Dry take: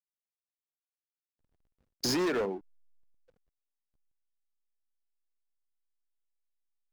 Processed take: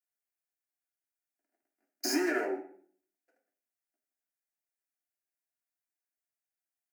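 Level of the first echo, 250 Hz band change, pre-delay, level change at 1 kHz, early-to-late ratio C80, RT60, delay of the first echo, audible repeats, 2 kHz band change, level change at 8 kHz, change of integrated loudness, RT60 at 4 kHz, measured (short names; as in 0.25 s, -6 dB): none, -0.5 dB, 3 ms, -1.0 dB, 12.5 dB, 0.50 s, none, none, +4.0 dB, +0.5 dB, -1.5 dB, 0.35 s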